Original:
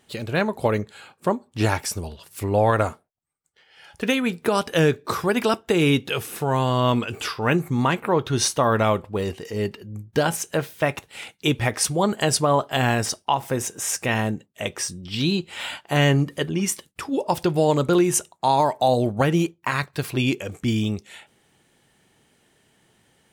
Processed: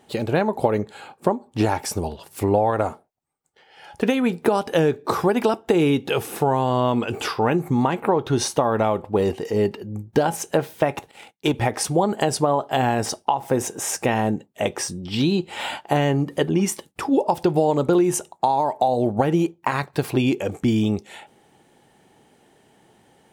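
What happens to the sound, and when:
11.11–11.54 s: power-law waveshaper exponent 1.4
whole clip: peaking EQ 820 Hz +7.5 dB 0.41 oct; compression 10:1, threshold -21 dBFS; peaking EQ 370 Hz +8 dB 2.6 oct

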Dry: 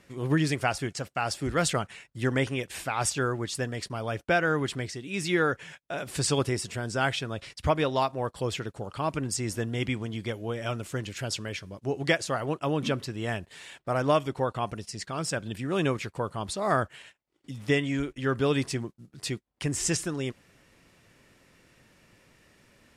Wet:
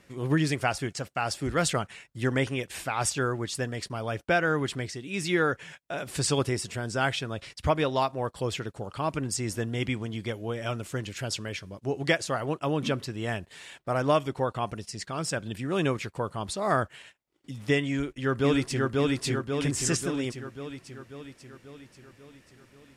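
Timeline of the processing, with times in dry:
17.90–18.92 s: echo throw 540 ms, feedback 60%, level -1 dB

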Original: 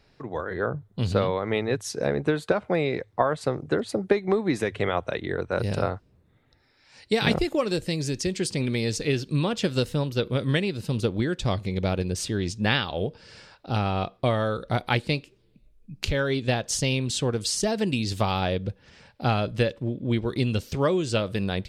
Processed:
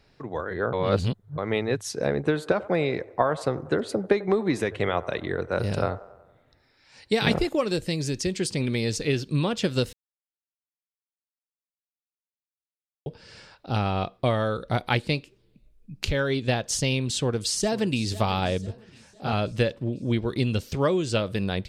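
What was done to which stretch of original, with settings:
0.73–1.38 s: reverse
2.14–7.49 s: feedback echo behind a band-pass 93 ms, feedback 57%, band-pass 740 Hz, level -16 dB
9.93–13.06 s: mute
17.11–18.02 s: echo throw 500 ms, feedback 55%, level -17 dB
18.66–19.33 s: detune thickener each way 59 cents

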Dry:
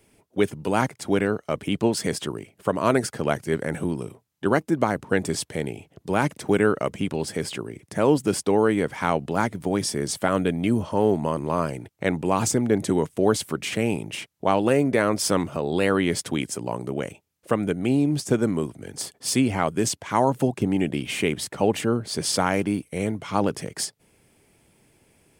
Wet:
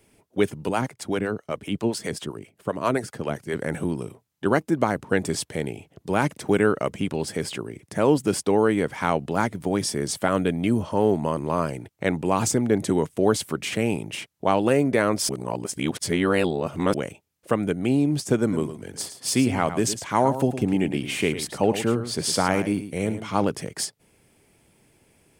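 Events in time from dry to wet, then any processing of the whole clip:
0.69–3.56 s: harmonic tremolo 7.6 Hz, crossover 430 Hz
15.29–16.94 s: reverse
18.39–23.44 s: delay 109 ms -11 dB

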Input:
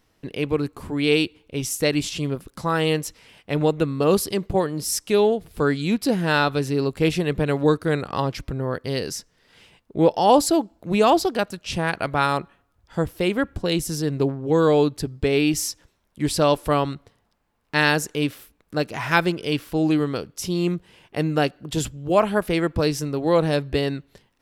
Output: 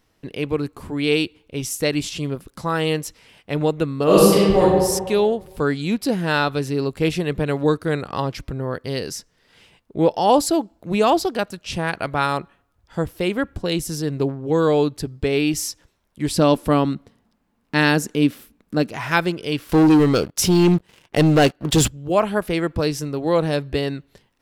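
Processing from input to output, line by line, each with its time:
4.04–4.62 s: reverb throw, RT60 1.5 s, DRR -8 dB
16.36–18.90 s: peaking EQ 230 Hz +12.5 dB 0.86 oct
19.69–21.88 s: waveshaping leveller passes 3

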